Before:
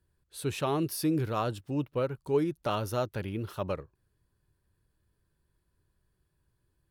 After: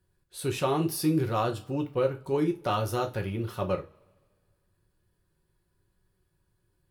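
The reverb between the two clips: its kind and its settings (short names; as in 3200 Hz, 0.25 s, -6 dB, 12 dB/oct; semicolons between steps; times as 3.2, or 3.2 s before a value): two-slope reverb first 0.24 s, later 1.8 s, from -28 dB, DRR 2.5 dB; gain +1 dB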